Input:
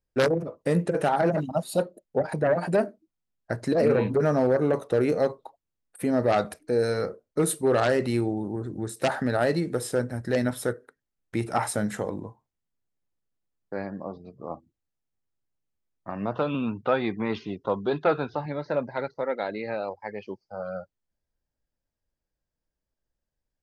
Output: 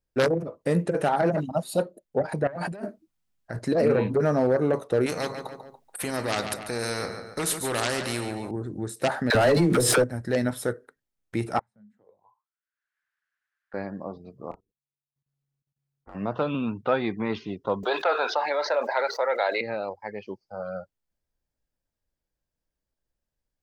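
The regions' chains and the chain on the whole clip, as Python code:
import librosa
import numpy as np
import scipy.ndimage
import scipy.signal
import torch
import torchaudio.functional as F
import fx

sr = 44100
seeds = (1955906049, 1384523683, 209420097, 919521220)

y = fx.chain(x, sr, fx.peak_eq(hz=440.0, db=-4.0, octaves=1.3),
    fx.over_compress(threshold_db=-34.0, ratio=-1.0), at=(2.47, 3.59))
y = fx.chain(y, sr, fx.hum_notches(base_hz=50, count=5),
    fx.echo_feedback(ms=143, feedback_pct=35, wet_db=-14),
    fx.spectral_comp(ratio=2.0), at=(5.06, 8.51))
y = fx.chain(y, sr, fx.leveller(passes=2),
    fx.dispersion(late='lows', ms=49.0, hz=610.0),
    fx.pre_swell(db_per_s=37.0), at=(9.3, 10.04))
y = fx.chain(y, sr, fx.tone_stack(knobs='10-0-10'),
    fx.auto_wah(base_hz=210.0, top_hz=1600.0, q=7.6, full_db=-36.5, direction='down'),
    fx.band_squash(depth_pct=100), at=(11.59, 13.74))
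y = fx.chain(y, sr, fx.level_steps(step_db=20),
    fx.ring_mod(carrier_hz=140.0),
    fx.overload_stage(gain_db=35.5), at=(14.51, 16.15))
y = fx.chain(y, sr, fx.highpass(hz=540.0, slope=24),
    fx.env_flatten(amount_pct=70), at=(17.83, 19.61))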